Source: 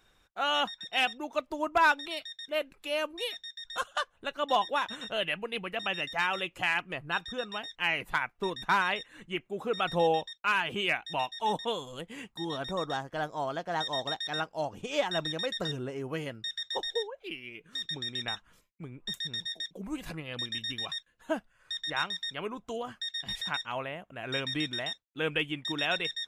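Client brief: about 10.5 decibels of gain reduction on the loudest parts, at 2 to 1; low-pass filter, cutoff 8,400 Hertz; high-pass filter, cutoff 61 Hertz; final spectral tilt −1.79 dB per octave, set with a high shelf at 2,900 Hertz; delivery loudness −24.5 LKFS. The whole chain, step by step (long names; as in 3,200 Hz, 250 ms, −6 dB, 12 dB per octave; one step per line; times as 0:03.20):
high-pass filter 61 Hz
low-pass filter 8,400 Hz
high-shelf EQ 2,900 Hz −5.5 dB
downward compressor 2 to 1, threshold −41 dBFS
level +16 dB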